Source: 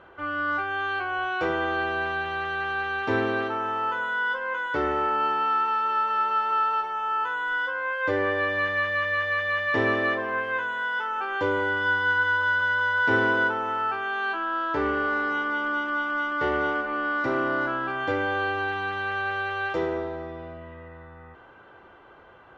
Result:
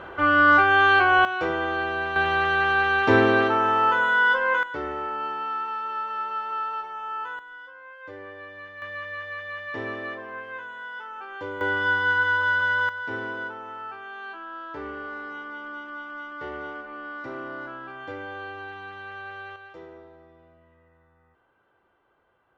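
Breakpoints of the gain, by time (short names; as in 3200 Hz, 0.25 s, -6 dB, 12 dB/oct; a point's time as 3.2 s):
+11 dB
from 1.25 s 0 dB
from 2.16 s +7 dB
from 4.63 s -5.5 dB
from 7.39 s -16 dB
from 8.82 s -9 dB
from 11.61 s +1 dB
from 12.89 s -10 dB
from 19.56 s -17 dB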